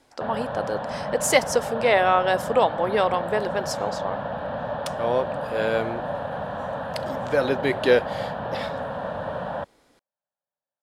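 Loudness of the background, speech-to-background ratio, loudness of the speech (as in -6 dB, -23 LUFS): -30.5 LUFS, 6.5 dB, -24.0 LUFS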